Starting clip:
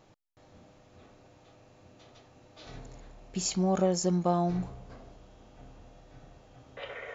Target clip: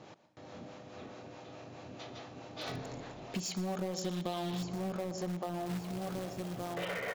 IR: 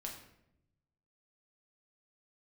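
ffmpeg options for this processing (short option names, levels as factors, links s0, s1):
-filter_complex "[0:a]asplit=2[s0][s1];[s1]adelay=1167,lowpass=f=4300:p=1,volume=0.398,asplit=2[s2][s3];[s3]adelay=1167,lowpass=f=4300:p=1,volume=0.26,asplit=2[s4][s5];[s5]adelay=1167,lowpass=f=4300:p=1,volume=0.26[s6];[s0][s2][s4][s6]amix=inputs=4:normalize=0,acrossover=split=430[s7][s8];[s7]aeval=exprs='val(0)*(1-0.5/2+0.5/2*cos(2*PI*4.7*n/s))':c=same[s9];[s8]aeval=exprs='val(0)*(1-0.5/2-0.5/2*cos(2*PI*4.7*n/s))':c=same[s10];[s9][s10]amix=inputs=2:normalize=0,asplit=2[s11][s12];[1:a]atrim=start_sample=2205,adelay=118[s13];[s12][s13]afir=irnorm=-1:irlink=0,volume=0.266[s14];[s11][s14]amix=inputs=2:normalize=0,acompressor=threshold=0.00708:ratio=8,highpass=130,lowpass=6000,asplit=2[s15][s16];[s16]aeval=exprs='(mod(133*val(0)+1,2)-1)/133':c=same,volume=0.282[s17];[s15][s17]amix=inputs=2:normalize=0,asettb=1/sr,asplit=3[s18][s19][s20];[s18]atrim=end=3.944[s21];[s19]atrim=start=3.94:end=4.63,asetpts=PTS-STARTPTS,afade=t=in:d=0.004:c=qsin,afade=t=out:st=0.686:d=0.004:c=qsin,equalizer=f=3500:t=o:w=0.65:g=13[s22];[s20]atrim=start=4.626[s23];[s21][s22]acrossfade=d=0.004:c1=hsin:c2=qsin[s24];[s24][s23]acrossfade=d=0.004:c1=qsin:c2=hsin,asettb=1/sr,asplit=3[s25][s26][s27];[s25]atrim=end=5.664[s28];[s26]atrim=start=5.66:end=6.74,asetpts=PTS-STARTPTS,afade=t=in:d=0.004:c=qsin,afade=t=out:st=1.076:d=0.004:c=qsin,acrusher=bits=3:mode=log:mix=0:aa=0.000001[s29];[s27]atrim=start=6.736[s30];[s28][s29]acrossfade=d=0.004:c1=hsin:c2=qsin[s31];[s31][s30]acrossfade=d=0.004:c1=qsin:c2=hsin,volume=2.82"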